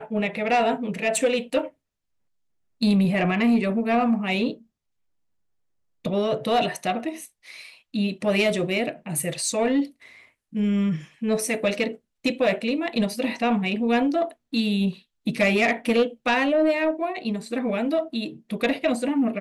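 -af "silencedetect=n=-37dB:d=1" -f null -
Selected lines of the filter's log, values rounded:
silence_start: 1.68
silence_end: 2.81 | silence_duration: 1.13
silence_start: 4.54
silence_end: 6.05 | silence_duration: 1.51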